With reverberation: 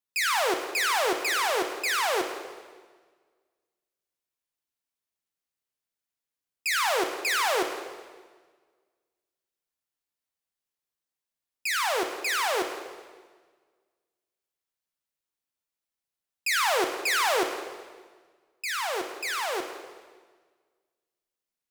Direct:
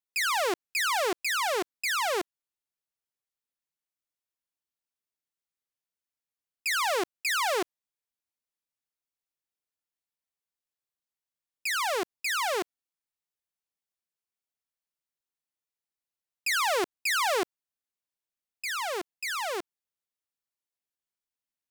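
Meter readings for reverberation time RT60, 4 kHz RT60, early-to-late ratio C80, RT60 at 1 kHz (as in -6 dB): 1.5 s, 1.3 s, 8.5 dB, 1.5 s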